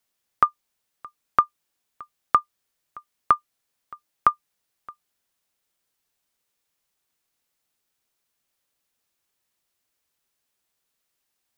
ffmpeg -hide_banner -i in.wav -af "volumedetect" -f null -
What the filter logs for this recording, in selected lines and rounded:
mean_volume: -32.4 dB
max_volume: -4.5 dB